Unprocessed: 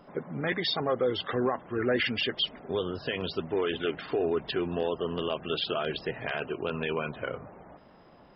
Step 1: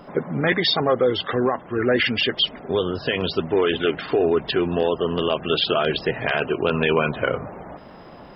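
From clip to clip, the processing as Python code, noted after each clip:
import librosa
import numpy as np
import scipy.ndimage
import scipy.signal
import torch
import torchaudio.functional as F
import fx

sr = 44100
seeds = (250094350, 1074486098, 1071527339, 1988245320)

y = fx.rider(x, sr, range_db=5, speed_s=2.0)
y = y * 10.0 ** (8.5 / 20.0)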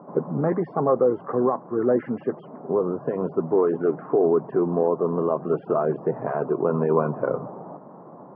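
y = scipy.signal.sosfilt(scipy.signal.ellip(3, 1.0, 50, [140.0, 1100.0], 'bandpass', fs=sr, output='sos'), x)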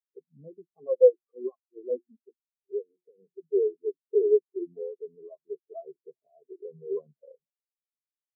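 y = fx.hum_notches(x, sr, base_hz=60, count=6)
y = fx.spectral_expand(y, sr, expansion=4.0)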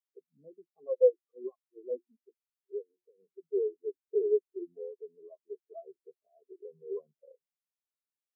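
y = scipy.signal.sosfilt(scipy.signal.butter(2, 270.0, 'highpass', fs=sr, output='sos'), x)
y = y * 10.0 ** (-5.0 / 20.0)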